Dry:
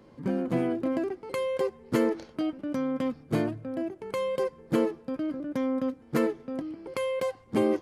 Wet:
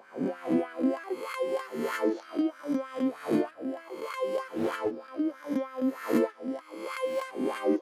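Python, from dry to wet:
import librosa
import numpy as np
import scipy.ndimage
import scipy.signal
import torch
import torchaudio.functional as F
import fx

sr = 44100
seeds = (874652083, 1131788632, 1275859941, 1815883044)

y = fx.spec_swells(x, sr, rise_s=0.91)
y = fx.filter_lfo_highpass(y, sr, shape='sine', hz=3.2, low_hz=250.0, high_hz=1500.0, q=3.2)
y = fx.doppler_dist(y, sr, depth_ms=0.27, at=(4.38, 5.0))
y = F.gain(torch.from_numpy(y), -6.0).numpy()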